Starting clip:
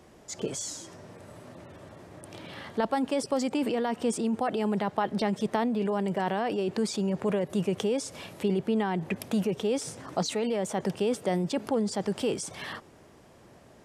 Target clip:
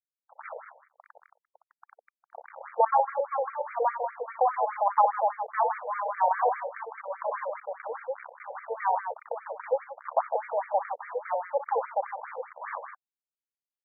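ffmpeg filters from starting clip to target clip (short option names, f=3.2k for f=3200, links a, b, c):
-filter_complex "[0:a]equalizer=f=1k:w=1.8:g=11,acrossover=split=590[a][b];[a]acompressor=threshold=-39dB:ratio=6[c];[c][b]amix=inputs=2:normalize=0,highpass=f=460:t=q:w=4.9,acrusher=bits=4:mix=0:aa=0.000001,adynamicsmooth=sensitivity=2:basefreq=1.5k,aecho=1:1:61.22|154.5:0.447|0.447,afftfilt=real='re*between(b*sr/1024,640*pow(1700/640,0.5+0.5*sin(2*PI*4.9*pts/sr))/1.41,640*pow(1700/640,0.5+0.5*sin(2*PI*4.9*pts/sr))*1.41)':imag='im*between(b*sr/1024,640*pow(1700/640,0.5+0.5*sin(2*PI*4.9*pts/sr))/1.41,640*pow(1700/640,0.5+0.5*sin(2*PI*4.9*pts/sr))*1.41)':win_size=1024:overlap=0.75"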